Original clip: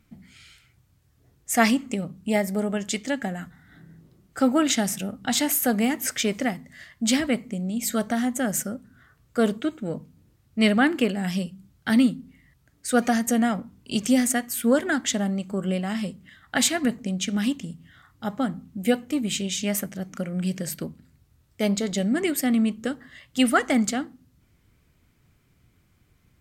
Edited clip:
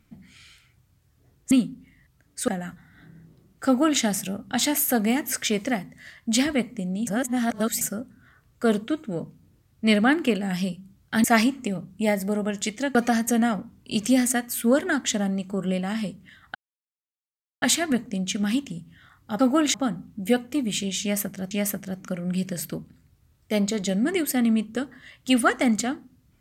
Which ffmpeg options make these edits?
-filter_complex "[0:a]asplit=11[s0][s1][s2][s3][s4][s5][s6][s7][s8][s9][s10];[s0]atrim=end=1.512[s11];[s1]atrim=start=11.978:end=12.952[s12];[s2]atrim=start=3.218:end=7.812[s13];[s3]atrim=start=7.808:end=8.552,asetpts=PTS-STARTPTS,areverse[s14];[s4]atrim=start=8.548:end=11.982[s15];[s5]atrim=start=1.508:end=3.222[s16];[s6]atrim=start=12.948:end=16.55,asetpts=PTS-STARTPTS,afade=t=out:st=3.598:d=0.004:c=hsin,apad=pad_dur=1.07[s17];[s7]atrim=start=16.55:end=18.322,asetpts=PTS-STARTPTS,afade=t=in:d=0.004:c=hsin[s18];[s8]atrim=start=4.398:end=4.752[s19];[s9]atrim=start=18.318:end=20.092[s20];[s10]atrim=start=19.598[s21];[s11][s12]acrossfade=d=0.004:c1=hsin:c2=hsin[s22];[s22][s13]acrossfade=d=0.004:c1=hsin:c2=hsin[s23];[s23][s14]acrossfade=d=0.004:c1=hsin:c2=hsin[s24];[s24][s15]acrossfade=d=0.004:c1=hsin:c2=hsin[s25];[s25][s16]acrossfade=d=0.004:c1=hsin:c2=hsin[s26];[s17][s18]concat=n=2:v=0:a=1[s27];[s26][s27]acrossfade=d=0.004:c1=hsin:c2=hsin[s28];[s28][s19]acrossfade=d=0.004:c1=hsin:c2=hsin[s29];[s29][s20]acrossfade=d=0.004:c1=hsin:c2=hsin[s30];[s30][s21]acrossfade=d=0.004:c1=hsin:c2=hsin"

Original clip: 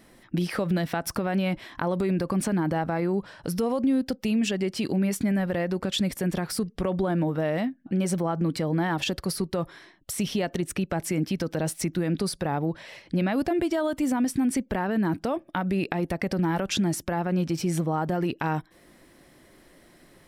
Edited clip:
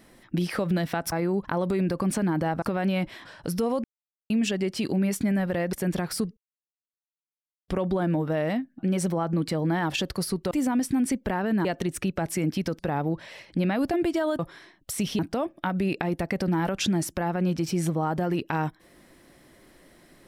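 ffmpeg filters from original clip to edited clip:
-filter_complex "[0:a]asplit=14[s0][s1][s2][s3][s4][s5][s6][s7][s8][s9][s10][s11][s12][s13];[s0]atrim=end=1.122[s14];[s1]atrim=start=2.918:end=3.252[s15];[s2]atrim=start=1.748:end=2.922[s16];[s3]atrim=start=1.118:end=1.752[s17];[s4]atrim=start=3.248:end=3.84,asetpts=PTS-STARTPTS,afade=t=out:st=0.588:d=0.004:c=hsin[s18];[s5]atrim=start=3.84:end=4.3,asetpts=PTS-STARTPTS,volume=0[s19];[s6]atrim=start=4.3:end=5.732,asetpts=PTS-STARTPTS,afade=t=in:d=0.004:c=hsin[s20];[s7]atrim=start=6.118:end=6.76,asetpts=PTS-STARTPTS,afade=t=out:st=0.638:d=0.004:c=hsin,apad=pad_dur=1.31[s21];[s8]atrim=start=6.76:end=9.592,asetpts=PTS-STARTPTS,afade=t=in:d=0.004:c=hsin[s22];[s9]atrim=start=13.958:end=15.102[s23];[s10]atrim=start=10.388:end=11.532[s24];[s11]atrim=start=12.358:end=13.962[s25];[s12]atrim=start=9.588:end=10.392[s26];[s13]atrim=start=15.098[s27];[s14][s15]acrossfade=d=0.004:c1=hsin:c2=hsin[s28];[s28][s16]acrossfade=d=0.004:c1=hsin:c2=hsin[s29];[s29][s17]acrossfade=d=0.004:c1=hsin:c2=hsin[s30];[s18][s19][s20]concat=n=3:v=0:a=1[s31];[s30][s31]acrossfade=d=0.004:c1=hsin:c2=hsin[s32];[s21][s22]concat=n=2:v=0:a=1[s33];[s32][s33]acrossfade=d=0.004:c1=hsin:c2=hsin[s34];[s34][s23]acrossfade=d=0.004:c1=hsin:c2=hsin[s35];[s35][s24]acrossfade=d=0.004:c1=hsin:c2=hsin[s36];[s36][s25]acrossfade=d=0.004:c1=hsin:c2=hsin[s37];[s37][s26]acrossfade=d=0.004:c1=hsin:c2=hsin[s38];[s38][s27]acrossfade=d=0.004:c1=hsin:c2=hsin"

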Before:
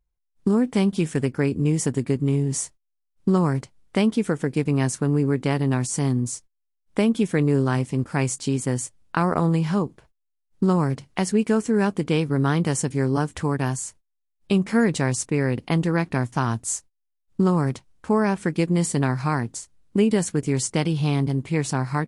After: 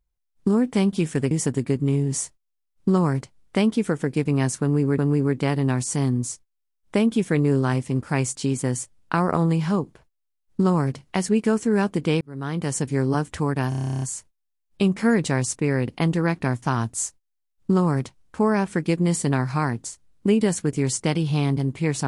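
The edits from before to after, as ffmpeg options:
-filter_complex "[0:a]asplit=15[s0][s1][s2][s3][s4][s5][s6][s7][s8][s9][s10][s11][s12][s13][s14];[s0]atrim=end=1.312[s15];[s1]atrim=start=1.708:end=5.382[s16];[s2]atrim=start=5.008:end=12.24,asetpts=PTS-STARTPTS,afade=t=out:st=7.228:d=0.004:c=hsin[s17];[s3]atrim=start=12.24:end=13.752,asetpts=PTS-STARTPTS,afade=t=in:d=0.64[s18];[s4]atrim=start=13.718:end=13.752[s19];[s5]atrim=start=13.718:end=13.752[s20];[s6]atrim=start=13.718:end=13.752[s21];[s7]atrim=start=13.718:end=13.752[s22];[s8]atrim=start=13.718:end=13.752[s23];[s9]atrim=start=13.718:end=13.752[s24];[s10]atrim=start=13.718:end=13.752[s25];[s11]atrim=start=13.718:end=13.752[s26];[s12]atrim=start=13.718:end=13.752[s27];[s13]atrim=start=13.718:end=13.752[s28];[s14]atrim=start=13.718[s29];[s15][s16]acrossfade=d=0.004:c1=hsin:c2=hsin[s30];[s17][s18]concat=n=2:v=0:a=1[s31];[s30][s31]acrossfade=d=0.004:c1=hsin:c2=hsin[s32];[s32][s19]acrossfade=d=0.004:c1=hsin:c2=hsin[s33];[s33][s20]acrossfade=d=0.004:c1=hsin:c2=hsin[s34];[s34][s21]acrossfade=d=0.004:c1=hsin:c2=hsin[s35];[s35][s22]acrossfade=d=0.004:c1=hsin:c2=hsin[s36];[s36][s23]acrossfade=d=0.004:c1=hsin:c2=hsin[s37];[s37][s24]acrossfade=d=0.004:c1=hsin:c2=hsin[s38];[s38][s25]acrossfade=d=0.004:c1=hsin:c2=hsin[s39];[s39][s26]acrossfade=d=0.004:c1=hsin:c2=hsin[s40];[s40][s27]acrossfade=d=0.004:c1=hsin:c2=hsin[s41];[s41][s28]acrossfade=d=0.004:c1=hsin:c2=hsin[s42];[s42][s29]acrossfade=d=0.004:c1=hsin:c2=hsin"

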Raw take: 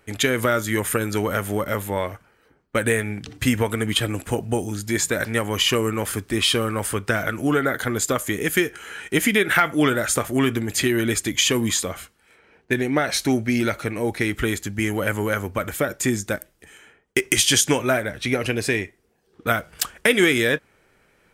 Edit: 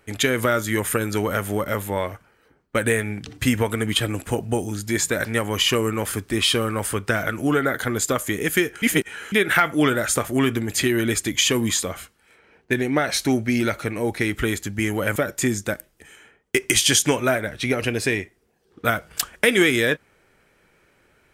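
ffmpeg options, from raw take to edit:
-filter_complex "[0:a]asplit=4[s0][s1][s2][s3];[s0]atrim=end=8.822[s4];[s1]atrim=start=8.818:end=9.322,asetpts=PTS-STARTPTS,areverse[s5];[s2]atrim=start=9.318:end=15.162[s6];[s3]atrim=start=15.778[s7];[s4][s5]acrossfade=d=0.004:c1=hsin:c2=hsin[s8];[s8][s6]acrossfade=d=0.004:c1=hsin:c2=hsin[s9];[s9][s7]acrossfade=d=0.004:c1=hsin:c2=hsin"

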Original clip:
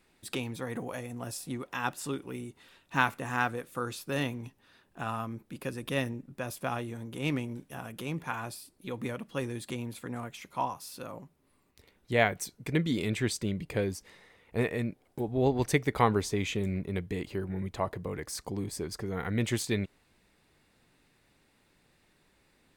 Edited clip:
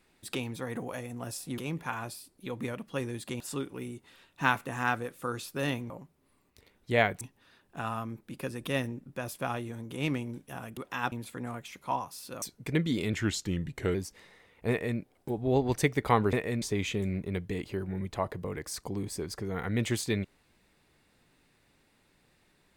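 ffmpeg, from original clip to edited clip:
-filter_complex "[0:a]asplit=12[s0][s1][s2][s3][s4][s5][s6][s7][s8][s9][s10][s11];[s0]atrim=end=1.582[s12];[s1]atrim=start=7.988:end=9.812[s13];[s2]atrim=start=1.928:end=4.432[s14];[s3]atrim=start=11.108:end=12.422[s15];[s4]atrim=start=4.428:end=7.992[s16];[s5]atrim=start=1.578:end=1.932[s17];[s6]atrim=start=9.808:end=11.112[s18];[s7]atrim=start=12.418:end=13.134[s19];[s8]atrim=start=13.13:end=13.85,asetpts=PTS-STARTPTS,asetrate=38808,aresample=44100[s20];[s9]atrim=start=13.846:end=16.232[s21];[s10]atrim=start=14.598:end=14.892[s22];[s11]atrim=start=16.228[s23];[s12][s13]acrossfade=d=0.004:c1=hsin:c2=hsin[s24];[s24][s14]acrossfade=d=0.004:c1=hsin:c2=hsin[s25];[s25][s15]acrossfade=d=0.004:c1=hsin:c2=hsin[s26];[s26][s16]acrossfade=d=0.004:c1=hsin:c2=hsin[s27];[s27][s17]acrossfade=d=0.004:c1=hsin:c2=hsin[s28];[s28][s18]acrossfade=d=0.004:c1=hsin:c2=hsin[s29];[s29][s19]acrossfade=d=0.004:c1=hsin:c2=hsin[s30];[s30][s20]acrossfade=d=0.004:c1=hsin:c2=hsin[s31];[s31][s21]acrossfade=d=0.004:c1=hsin:c2=hsin[s32];[s32][s22]acrossfade=d=0.004:c1=hsin:c2=hsin[s33];[s33][s23]acrossfade=d=0.004:c1=hsin:c2=hsin"

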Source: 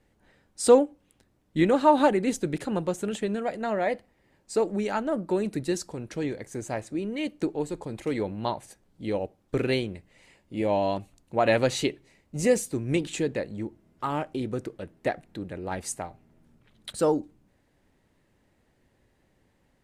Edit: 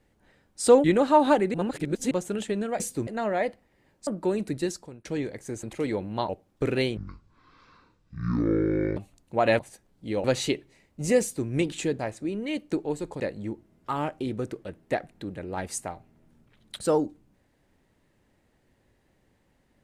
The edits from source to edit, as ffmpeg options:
-filter_complex "[0:a]asplit=16[s0][s1][s2][s3][s4][s5][s6][s7][s8][s9][s10][s11][s12][s13][s14][s15];[s0]atrim=end=0.842[s16];[s1]atrim=start=1.568:end=2.272[s17];[s2]atrim=start=2.268:end=2.842,asetpts=PTS-STARTPTS,areverse[s18];[s3]atrim=start=2.838:end=3.532[s19];[s4]atrim=start=12.558:end=12.832[s20];[s5]atrim=start=3.528:end=4.532[s21];[s6]atrim=start=5.128:end=6.11,asetpts=PTS-STARTPTS,afade=t=out:st=0.532:d=0.45:silence=0.149624[s22];[s7]atrim=start=6.11:end=6.692,asetpts=PTS-STARTPTS,afade=t=in:d=0.004:c=hsin:silence=0.149624[s23];[s8]atrim=start=7.898:end=8.562[s24];[s9]atrim=start=9.208:end=9.894[s25];[s10]atrim=start=9.89:end=10.97,asetpts=PTS-STARTPTS,asetrate=23814,aresample=44100[s26];[s11]atrim=start=10.966:end=11.592[s27];[s12]atrim=start=8.558:end=9.212[s28];[s13]atrim=start=11.588:end=13.342[s29];[s14]atrim=start=6.688:end=7.902[s30];[s15]atrim=start=13.338[s31];[s16][s17]acrossfade=d=0.004:c1=hsin:c2=hsin[s32];[s32][s18]acrossfade=d=0.004:c1=hsin:c2=hsin[s33];[s33][s19]acrossfade=d=0.004:c1=hsin:c2=hsin[s34];[s34][s20]acrossfade=d=0.004:c1=hsin:c2=hsin[s35];[s35][s21]acrossfade=d=0.004:c1=hsin:c2=hsin[s36];[s22][s23]concat=n=2:v=0:a=1[s37];[s36][s37]acrossfade=d=0.004:c1=hsin:c2=hsin[s38];[s38][s24]acrossfade=d=0.004:c1=hsin:c2=hsin[s39];[s39][s25]acrossfade=d=0.004:c1=hsin:c2=hsin[s40];[s40][s26]acrossfade=d=0.004:c1=hsin:c2=hsin[s41];[s41][s27]acrossfade=d=0.004:c1=hsin:c2=hsin[s42];[s42][s28]acrossfade=d=0.004:c1=hsin:c2=hsin[s43];[s43][s29]acrossfade=d=0.004:c1=hsin:c2=hsin[s44];[s44][s30]acrossfade=d=0.004:c1=hsin:c2=hsin[s45];[s45][s31]acrossfade=d=0.004:c1=hsin:c2=hsin"

